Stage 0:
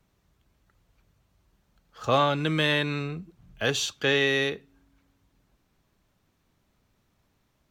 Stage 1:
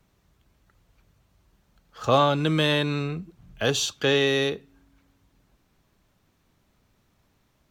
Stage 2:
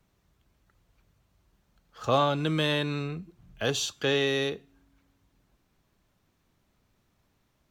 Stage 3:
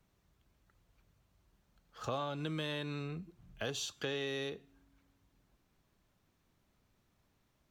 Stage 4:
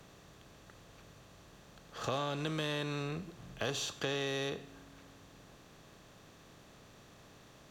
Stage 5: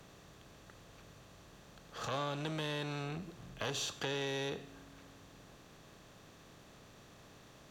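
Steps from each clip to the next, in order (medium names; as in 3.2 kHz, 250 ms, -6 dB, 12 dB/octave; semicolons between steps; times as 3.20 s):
dynamic bell 2 kHz, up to -7 dB, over -41 dBFS, Q 1.6; trim +3.5 dB
feedback comb 350 Hz, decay 0.55 s, mix 40%
compression 3:1, threshold -33 dBFS, peak gain reduction 11 dB; trim -4 dB
spectral levelling over time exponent 0.6
transformer saturation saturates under 890 Hz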